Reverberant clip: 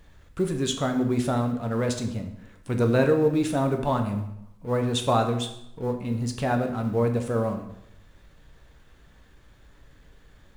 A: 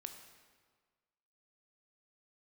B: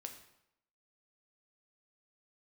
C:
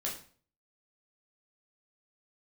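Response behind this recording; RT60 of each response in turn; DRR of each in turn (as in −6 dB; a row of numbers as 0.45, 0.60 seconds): B; 1.6, 0.80, 0.45 seconds; 5.5, 4.5, −4.0 decibels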